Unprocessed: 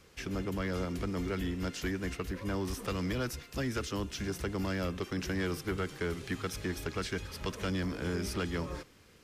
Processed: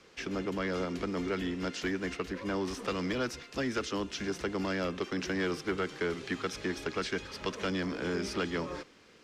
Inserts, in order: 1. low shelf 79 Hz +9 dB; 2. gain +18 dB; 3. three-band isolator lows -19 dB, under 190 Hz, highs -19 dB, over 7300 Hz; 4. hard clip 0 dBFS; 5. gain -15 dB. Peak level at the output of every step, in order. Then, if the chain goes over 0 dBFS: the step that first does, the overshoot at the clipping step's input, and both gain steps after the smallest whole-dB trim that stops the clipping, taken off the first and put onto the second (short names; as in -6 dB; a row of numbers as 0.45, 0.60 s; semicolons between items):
-22.0, -4.0, -4.5, -4.5, -19.5 dBFS; no overload